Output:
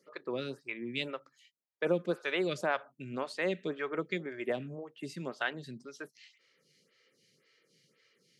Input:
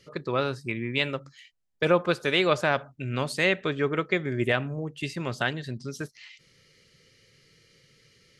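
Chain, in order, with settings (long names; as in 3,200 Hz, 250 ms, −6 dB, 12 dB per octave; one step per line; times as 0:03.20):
high-pass filter 160 Hz 24 dB per octave
phaser with staggered stages 1.9 Hz
level −5 dB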